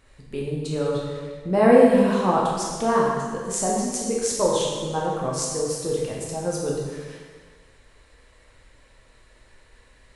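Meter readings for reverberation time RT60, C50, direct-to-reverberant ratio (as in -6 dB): 1.6 s, 0.0 dB, -4.0 dB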